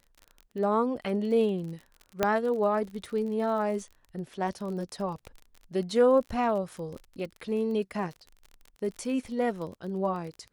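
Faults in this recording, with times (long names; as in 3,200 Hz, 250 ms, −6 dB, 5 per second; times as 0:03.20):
surface crackle 34 per second −37 dBFS
0:02.23: click −10 dBFS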